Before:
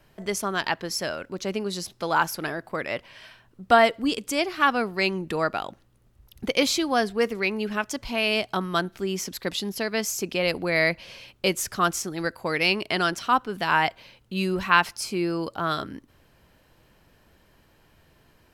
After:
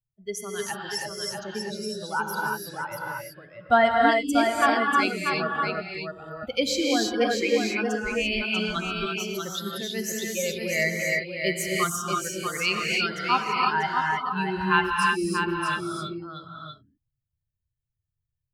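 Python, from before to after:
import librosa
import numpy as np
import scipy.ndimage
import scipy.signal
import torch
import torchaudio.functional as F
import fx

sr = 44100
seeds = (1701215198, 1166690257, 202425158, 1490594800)

p1 = fx.bin_expand(x, sr, power=2.0)
p2 = p1 + fx.echo_single(p1, sr, ms=640, db=-5.5, dry=0)
y = fx.rev_gated(p2, sr, seeds[0], gate_ms=360, shape='rising', drr_db=-1.5)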